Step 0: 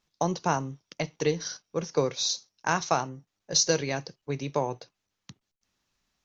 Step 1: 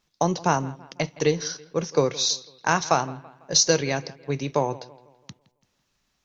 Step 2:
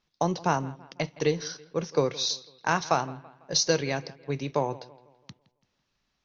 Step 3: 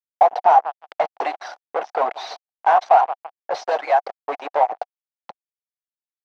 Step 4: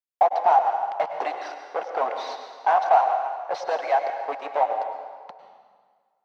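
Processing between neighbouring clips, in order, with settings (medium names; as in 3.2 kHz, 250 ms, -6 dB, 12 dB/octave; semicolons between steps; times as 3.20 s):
bucket-brigade echo 166 ms, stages 4096, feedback 44%, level -20 dB; trim +4.5 dB
low-pass 5.7 kHz 24 dB/octave; trim -3.5 dB
harmonic-percussive separation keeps percussive; fuzz box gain 37 dB, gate -43 dBFS; ladder band-pass 800 Hz, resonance 75%; trim +8.5 dB
plate-style reverb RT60 1.7 s, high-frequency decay 0.85×, pre-delay 90 ms, DRR 5.5 dB; trim -4.5 dB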